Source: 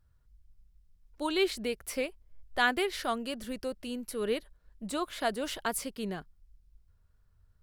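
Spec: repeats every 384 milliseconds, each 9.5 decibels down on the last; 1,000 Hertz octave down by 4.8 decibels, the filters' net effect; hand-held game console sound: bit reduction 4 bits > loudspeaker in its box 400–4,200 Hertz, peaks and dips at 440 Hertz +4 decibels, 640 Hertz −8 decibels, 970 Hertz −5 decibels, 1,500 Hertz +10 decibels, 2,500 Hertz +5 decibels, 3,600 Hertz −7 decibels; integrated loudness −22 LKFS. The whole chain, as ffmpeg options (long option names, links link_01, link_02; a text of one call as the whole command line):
ffmpeg -i in.wav -af "equalizer=frequency=1000:width_type=o:gain=-7,aecho=1:1:384|768|1152|1536:0.335|0.111|0.0365|0.012,acrusher=bits=3:mix=0:aa=0.000001,highpass=400,equalizer=frequency=440:width_type=q:width=4:gain=4,equalizer=frequency=640:width_type=q:width=4:gain=-8,equalizer=frequency=970:width_type=q:width=4:gain=-5,equalizer=frequency=1500:width_type=q:width=4:gain=10,equalizer=frequency=2500:width_type=q:width=4:gain=5,equalizer=frequency=3600:width_type=q:width=4:gain=-7,lowpass=frequency=4200:width=0.5412,lowpass=frequency=4200:width=1.3066,volume=10.5dB" out.wav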